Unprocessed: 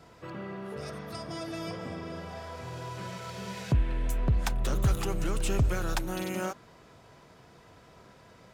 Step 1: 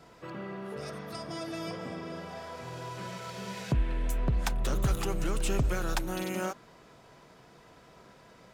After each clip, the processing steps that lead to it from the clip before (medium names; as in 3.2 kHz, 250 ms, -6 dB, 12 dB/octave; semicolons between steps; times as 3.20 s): peaking EQ 87 Hz -10.5 dB 0.59 oct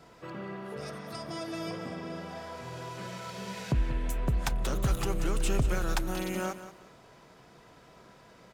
feedback delay 183 ms, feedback 25%, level -13 dB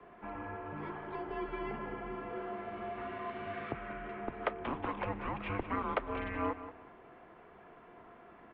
mistuned SSB -290 Hz 220–3500 Hz; three-band isolator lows -12 dB, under 230 Hz, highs -19 dB, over 2.4 kHz; trim +3 dB